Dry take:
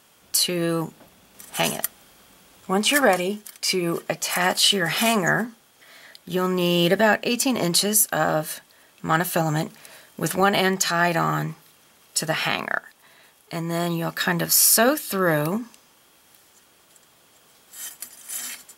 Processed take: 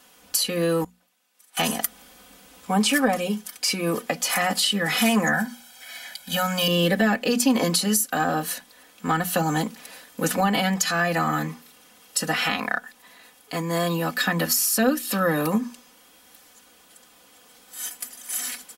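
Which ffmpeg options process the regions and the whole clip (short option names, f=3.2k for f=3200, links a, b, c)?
-filter_complex "[0:a]asettb=1/sr,asplit=3[a][b][c];[a]atrim=end=0.844[d];[b]atrim=start=0.84:end=1.57,asetpts=PTS-STARTPTS,afade=t=in:d=0.004:c=qsin,afade=t=out:st=0.726:d=0.004:c=qsin,lowpass=f=1.2k:p=1,aderivative[e];[c]atrim=start=1.566[f];[d][e]acrossfade=d=0.004:c1=hsin:c2=qsin[g];[g][f]acrossfade=d=0.004:c1=qsin:c2=hsin,asettb=1/sr,asplit=3[h][i][j];[h]atrim=end=5.334[k];[i]atrim=start=5.33:end=6.68,asetpts=PTS-STARTPTS,afade=t=in:d=0.004:c=qsin,afade=t=out:st=1.346:d=0.004:c=qsin,tiltshelf=f=940:g=-5,aecho=1:1:1.3:0.94,atrim=end_sample=59535[l];[j]atrim=start=6.676[m];[k][l]acrossfade=d=0.004:c1=hsin:c2=qsin[n];[n][m]acrossfade=d=0.004:c1=qsin:c2=hsin,bandreject=f=60:t=h:w=6,bandreject=f=120:t=h:w=6,bandreject=f=180:t=h:w=6,bandreject=f=240:t=h:w=6,aecho=1:1:4:0.93,acrossover=split=290[o][p];[p]acompressor=threshold=-20dB:ratio=6[q];[o][q]amix=inputs=2:normalize=0"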